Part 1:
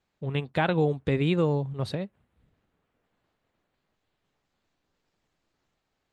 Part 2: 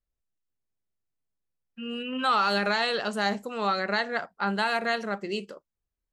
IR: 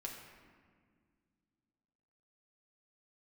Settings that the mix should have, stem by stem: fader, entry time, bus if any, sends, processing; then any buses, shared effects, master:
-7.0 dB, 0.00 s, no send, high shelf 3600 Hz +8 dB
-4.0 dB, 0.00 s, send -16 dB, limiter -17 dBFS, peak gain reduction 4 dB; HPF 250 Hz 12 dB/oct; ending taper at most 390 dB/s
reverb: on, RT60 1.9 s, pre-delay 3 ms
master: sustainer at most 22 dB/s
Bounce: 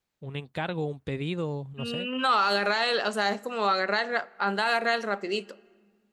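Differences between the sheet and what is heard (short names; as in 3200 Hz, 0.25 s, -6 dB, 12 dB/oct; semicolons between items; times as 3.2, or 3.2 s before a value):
stem 2 -4.0 dB -> +2.0 dB; master: missing sustainer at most 22 dB/s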